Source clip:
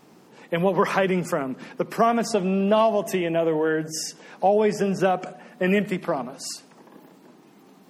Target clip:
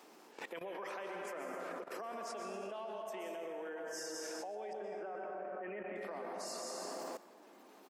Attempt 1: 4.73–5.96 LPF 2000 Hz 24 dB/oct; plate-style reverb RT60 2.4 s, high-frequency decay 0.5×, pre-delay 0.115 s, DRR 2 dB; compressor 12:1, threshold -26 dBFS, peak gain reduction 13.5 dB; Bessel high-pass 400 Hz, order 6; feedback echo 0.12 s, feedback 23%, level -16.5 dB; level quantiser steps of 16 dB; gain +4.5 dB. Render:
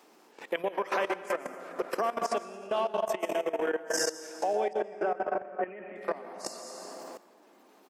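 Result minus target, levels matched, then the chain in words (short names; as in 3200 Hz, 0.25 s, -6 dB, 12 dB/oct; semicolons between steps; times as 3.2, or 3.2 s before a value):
compressor: peak gain reduction -8.5 dB
4.73–5.96 LPF 2000 Hz 24 dB/oct; plate-style reverb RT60 2.4 s, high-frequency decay 0.5×, pre-delay 0.115 s, DRR 2 dB; compressor 12:1, threshold -35.5 dBFS, peak gain reduction 22.5 dB; Bessel high-pass 400 Hz, order 6; feedback echo 0.12 s, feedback 23%, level -16.5 dB; level quantiser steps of 16 dB; gain +4.5 dB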